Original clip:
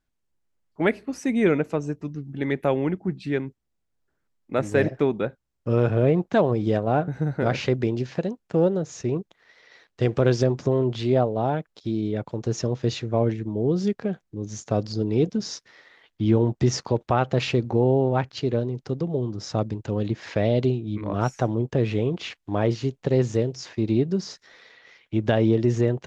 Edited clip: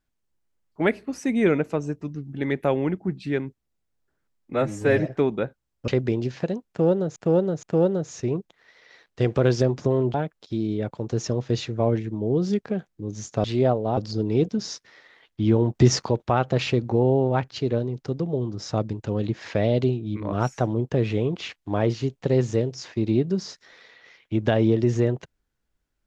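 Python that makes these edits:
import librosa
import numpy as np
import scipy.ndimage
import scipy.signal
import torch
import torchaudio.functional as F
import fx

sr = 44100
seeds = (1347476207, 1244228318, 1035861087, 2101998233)

y = fx.edit(x, sr, fx.stretch_span(start_s=4.53, length_s=0.36, factor=1.5),
    fx.cut(start_s=5.7, length_s=1.93),
    fx.repeat(start_s=8.44, length_s=0.47, count=3),
    fx.move(start_s=10.95, length_s=0.53, to_s=14.78),
    fx.clip_gain(start_s=16.56, length_s=0.34, db=4.5), tone=tone)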